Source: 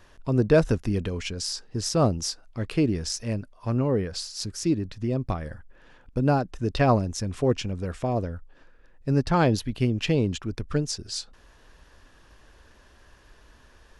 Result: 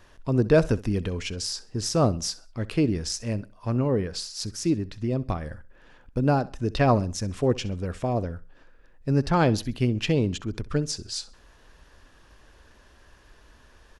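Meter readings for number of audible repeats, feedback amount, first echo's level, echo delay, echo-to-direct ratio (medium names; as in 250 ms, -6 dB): 2, 33%, -19.5 dB, 65 ms, -19.0 dB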